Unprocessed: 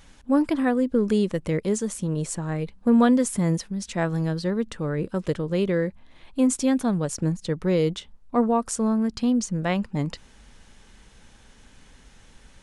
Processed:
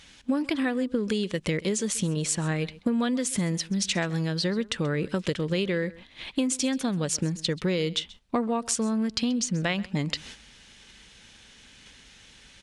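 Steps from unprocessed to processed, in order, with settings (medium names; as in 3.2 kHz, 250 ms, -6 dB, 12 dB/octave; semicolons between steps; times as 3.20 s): frequency weighting D; gate -47 dBFS, range -10 dB; bass shelf 140 Hz +10 dB; compression 10:1, threshold -30 dBFS, peak gain reduction 17 dB; delay 132 ms -20.5 dB; trim +6.5 dB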